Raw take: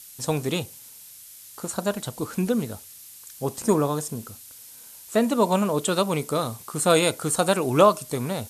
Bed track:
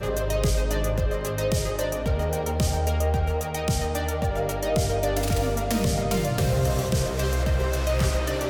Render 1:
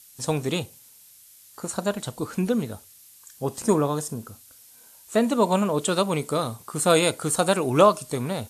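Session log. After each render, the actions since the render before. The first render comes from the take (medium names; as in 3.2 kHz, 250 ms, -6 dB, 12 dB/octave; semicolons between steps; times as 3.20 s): noise print and reduce 6 dB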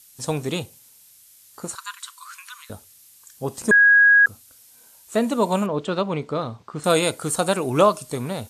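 1.75–2.70 s: brick-wall FIR high-pass 960 Hz; 3.71–4.26 s: bleep 1.65 kHz -10 dBFS; 5.66–6.84 s: distance through air 190 m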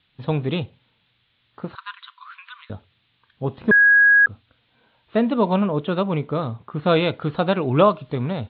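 steep low-pass 3.8 kHz 72 dB/octave; peaking EQ 120 Hz +6 dB 1.9 oct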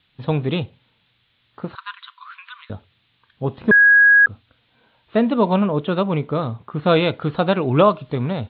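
trim +2 dB; peak limiter -3 dBFS, peak gain reduction 1.5 dB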